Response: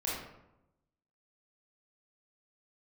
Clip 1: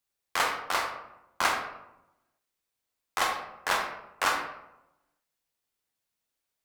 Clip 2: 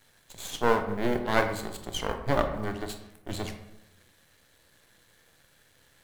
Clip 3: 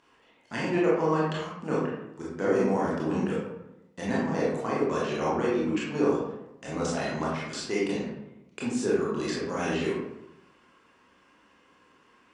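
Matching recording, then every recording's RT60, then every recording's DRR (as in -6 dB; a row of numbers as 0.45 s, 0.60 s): 3; 0.90 s, 0.90 s, 0.90 s; 1.5 dB, 6.0 dB, -6.5 dB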